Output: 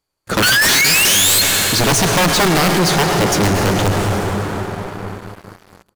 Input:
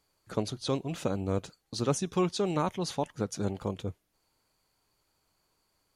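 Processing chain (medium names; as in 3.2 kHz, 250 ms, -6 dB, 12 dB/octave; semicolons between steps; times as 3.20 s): painted sound rise, 0.42–1.42 s, 1.4–4.3 kHz -27 dBFS; integer overflow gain 23.5 dB; resampled via 32 kHz; on a send at -4.5 dB: reverberation RT60 5.0 s, pre-delay 93 ms; on the sum: waveshaping leveller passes 5; trim +6.5 dB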